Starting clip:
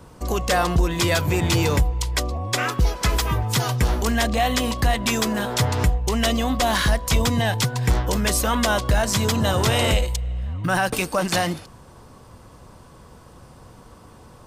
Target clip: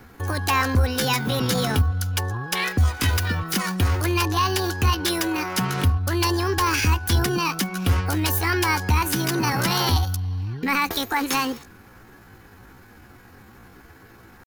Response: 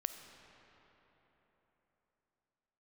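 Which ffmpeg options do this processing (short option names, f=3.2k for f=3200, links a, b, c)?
-af "asetrate=66075,aresample=44100,atempo=0.66742,equalizer=f=160:t=o:w=0.33:g=-11,equalizer=f=630:t=o:w=0.33:g=-11,equalizer=f=8k:t=o:w=0.33:g=-8"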